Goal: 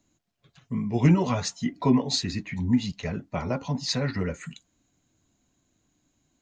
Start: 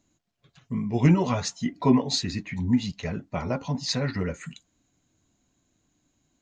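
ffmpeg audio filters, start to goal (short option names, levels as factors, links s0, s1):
-filter_complex "[0:a]acrossover=split=290|3000[s0][s1][s2];[s1]acompressor=threshold=0.0708:ratio=6[s3];[s0][s3][s2]amix=inputs=3:normalize=0"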